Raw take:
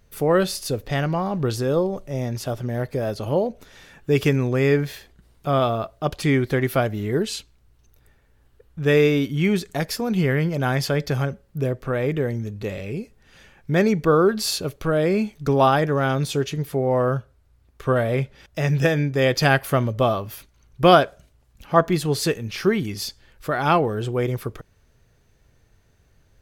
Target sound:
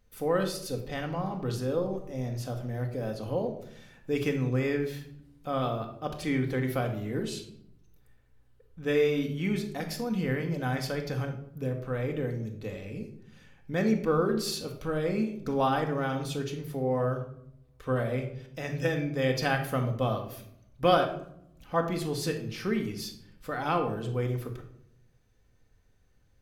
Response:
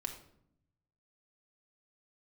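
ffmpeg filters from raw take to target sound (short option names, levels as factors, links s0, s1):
-filter_complex "[1:a]atrim=start_sample=2205[s0];[0:a][s0]afir=irnorm=-1:irlink=0,volume=0.376"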